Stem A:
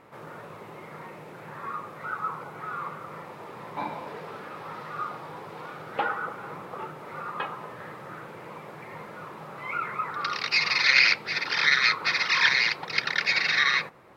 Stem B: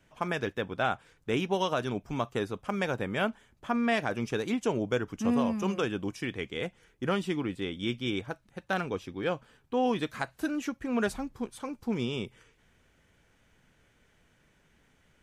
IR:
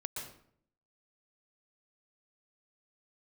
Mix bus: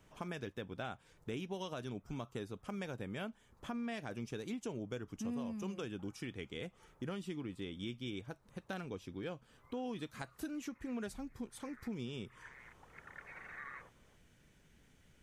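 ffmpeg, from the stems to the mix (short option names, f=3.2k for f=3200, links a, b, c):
-filter_complex "[0:a]lowpass=f=1.7k:w=0.5412,lowpass=f=1.7k:w=1.3066,volume=-19.5dB[a];[1:a]equalizer=f=1.1k:w=0.41:g=-7,volume=1.5dB,asplit=2[b][c];[c]apad=whole_len=624699[d];[a][d]sidechaincompress=threshold=-43dB:ratio=3:attack=8.6:release=1020[e];[e][b]amix=inputs=2:normalize=0,acompressor=threshold=-44dB:ratio=2.5"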